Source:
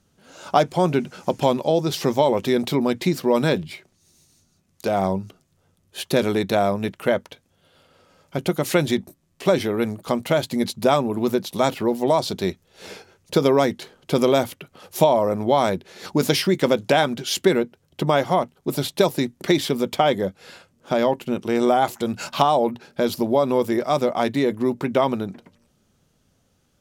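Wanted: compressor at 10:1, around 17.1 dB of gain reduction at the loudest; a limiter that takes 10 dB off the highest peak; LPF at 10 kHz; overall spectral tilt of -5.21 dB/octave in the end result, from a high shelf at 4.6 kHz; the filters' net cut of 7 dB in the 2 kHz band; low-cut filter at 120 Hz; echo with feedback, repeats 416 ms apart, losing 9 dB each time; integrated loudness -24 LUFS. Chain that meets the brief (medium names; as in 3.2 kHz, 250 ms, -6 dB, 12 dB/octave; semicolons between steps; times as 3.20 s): high-pass 120 Hz; low-pass 10 kHz; peaking EQ 2 kHz -8.5 dB; treble shelf 4.6 kHz -5 dB; compression 10:1, threshold -31 dBFS; peak limiter -25.5 dBFS; feedback delay 416 ms, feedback 35%, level -9 dB; trim +13.5 dB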